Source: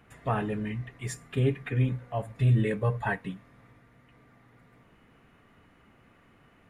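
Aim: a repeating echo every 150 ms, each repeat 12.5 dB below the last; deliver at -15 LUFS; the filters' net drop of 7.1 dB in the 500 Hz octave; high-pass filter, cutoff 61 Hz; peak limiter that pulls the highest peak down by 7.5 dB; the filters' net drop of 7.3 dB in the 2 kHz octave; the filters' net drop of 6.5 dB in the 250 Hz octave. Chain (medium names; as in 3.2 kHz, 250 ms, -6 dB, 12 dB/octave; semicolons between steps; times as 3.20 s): high-pass 61 Hz; peaking EQ 250 Hz -8 dB; peaking EQ 500 Hz -6 dB; peaking EQ 2 kHz -9 dB; peak limiter -24.5 dBFS; feedback delay 150 ms, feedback 24%, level -12.5 dB; trim +20.5 dB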